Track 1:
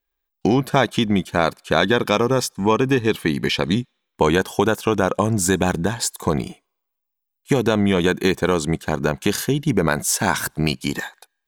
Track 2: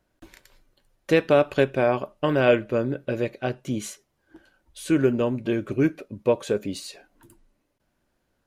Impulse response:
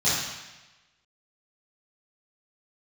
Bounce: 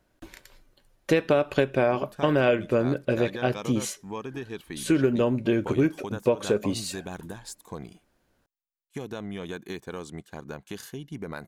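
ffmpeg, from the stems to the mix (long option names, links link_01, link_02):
-filter_complex "[0:a]adelay=1450,volume=-18dB[link_01];[1:a]volume=3dB,asplit=2[link_02][link_03];[link_03]apad=whole_len=569978[link_04];[link_01][link_04]sidechaincompress=threshold=-17dB:ratio=8:attack=16:release=165[link_05];[link_05][link_02]amix=inputs=2:normalize=0,acompressor=threshold=-18dB:ratio=5"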